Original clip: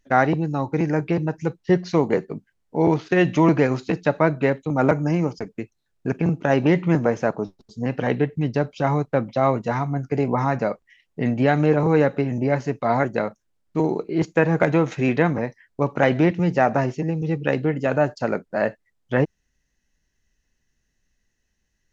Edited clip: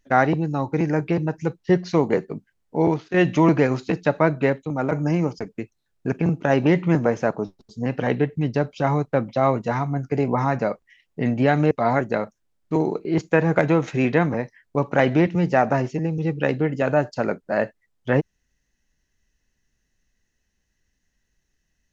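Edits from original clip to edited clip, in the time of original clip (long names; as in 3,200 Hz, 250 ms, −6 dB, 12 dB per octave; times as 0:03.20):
0:02.81–0:03.14: fade out, to −11.5 dB
0:04.49–0:04.92: fade out, to −7.5 dB
0:11.71–0:12.75: remove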